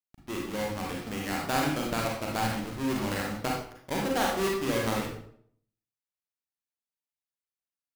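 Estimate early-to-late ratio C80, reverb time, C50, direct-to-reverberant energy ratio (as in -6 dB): 6.0 dB, 0.65 s, 2.0 dB, -2.0 dB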